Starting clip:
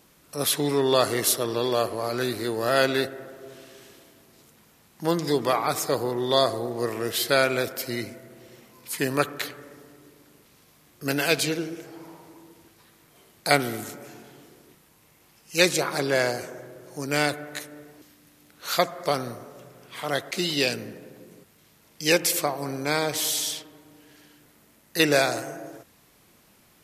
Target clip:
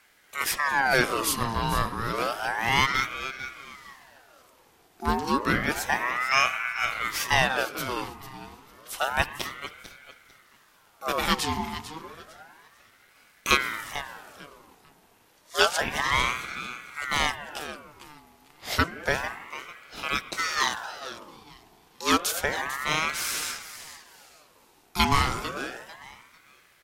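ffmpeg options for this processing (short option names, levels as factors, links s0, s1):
-af "highshelf=f=5800:g=-5,aecho=1:1:447|894|1341:0.224|0.056|0.014,aeval=exprs='val(0)*sin(2*PI*1200*n/s+1200*0.55/0.3*sin(2*PI*0.3*n/s))':c=same,volume=1.19"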